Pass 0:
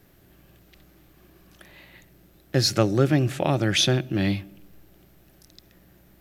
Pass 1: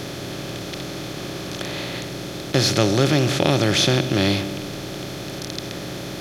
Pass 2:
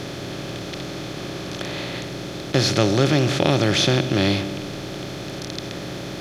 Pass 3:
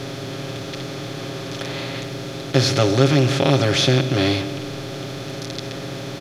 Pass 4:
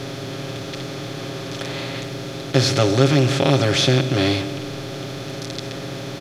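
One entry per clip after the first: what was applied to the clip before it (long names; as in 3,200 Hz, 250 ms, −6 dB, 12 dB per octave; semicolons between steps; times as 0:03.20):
compressor on every frequency bin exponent 0.4; level −1 dB
high-shelf EQ 10,000 Hz −11 dB
comb filter 7.4 ms, depth 70%; level −1 dB
dynamic equaliser 8,000 Hz, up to +4 dB, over −50 dBFS, Q 4.7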